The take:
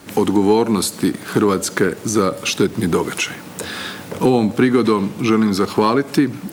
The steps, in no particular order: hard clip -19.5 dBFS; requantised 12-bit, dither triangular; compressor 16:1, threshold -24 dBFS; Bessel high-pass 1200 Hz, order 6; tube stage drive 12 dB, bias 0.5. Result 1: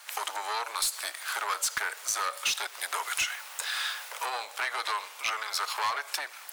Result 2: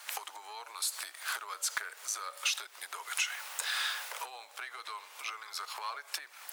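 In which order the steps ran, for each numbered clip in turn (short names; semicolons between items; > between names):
requantised > tube stage > Bessel high-pass > hard clip > compressor; compressor > requantised > tube stage > Bessel high-pass > hard clip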